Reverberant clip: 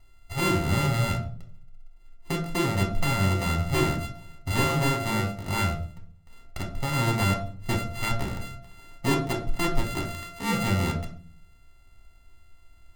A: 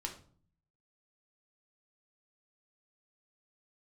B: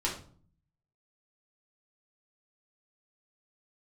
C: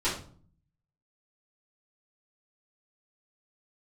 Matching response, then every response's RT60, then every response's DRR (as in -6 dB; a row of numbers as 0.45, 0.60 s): A; 0.50, 0.50, 0.50 s; 0.5, -5.5, -14.0 dB